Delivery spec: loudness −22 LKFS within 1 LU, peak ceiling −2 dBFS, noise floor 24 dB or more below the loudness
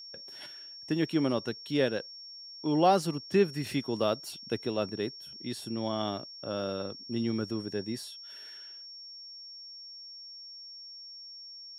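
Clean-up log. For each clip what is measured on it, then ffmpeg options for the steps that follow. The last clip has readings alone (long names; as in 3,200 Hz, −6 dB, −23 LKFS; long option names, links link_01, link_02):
interfering tone 5,500 Hz; level of the tone −44 dBFS; integrated loudness −31.5 LKFS; sample peak −11.5 dBFS; target loudness −22.0 LKFS
→ -af "bandreject=frequency=5500:width=30"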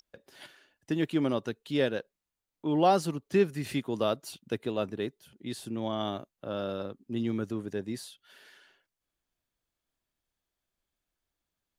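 interfering tone none found; integrated loudness −31.5 LKFS; sample peak −12.0 dBFS; target loudness −22.0 LKFS
→ -af "volume=9.5dB"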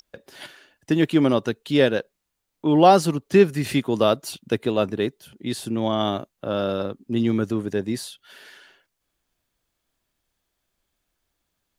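integrated loudness −22.0 LKFS; sample peak −2.5 dBFS; background noise floor −79 dBFS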